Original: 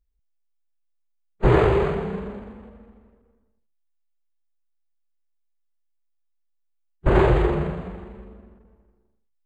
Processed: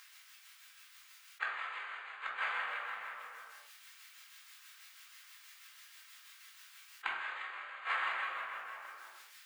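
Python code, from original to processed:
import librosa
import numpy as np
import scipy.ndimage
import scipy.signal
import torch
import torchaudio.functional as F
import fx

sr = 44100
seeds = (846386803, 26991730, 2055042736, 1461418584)

p1 = scipy.signal.sosfilt(scipy.signal.butter(4, 1400.0, 'highpass', fs=sr, output='sos'), x)
p2 = fx.high_shelf(p1, sr, hz=4000.0, db=-11.5)
p3 = fx.rider(p2, sr, range_db=10, speed_s=0.5)
p4 = p2 + (p3 * librosa.db_to_amplitude(2.5))
p5 = p4 * (1.0 - 0.61 / 2.0 + 0.61 / 2.0 * np.cos(2.0 * np.pi * 6.2 * (np.arange(len(p4)) / sr)))
p6 = fx.gate_flip(p5, sr, shuts_db=-35.0, range_db=-36)
p7 = fx.room_shoebox(p6, sr, seeds[0], volume_m3=230.0, walls='furnished', distance_m=2.1)
p8 = fx.env_flatten(p7, sr, amount_pct=50)
y = p8 * librosa.db_to_amplitude(12.0)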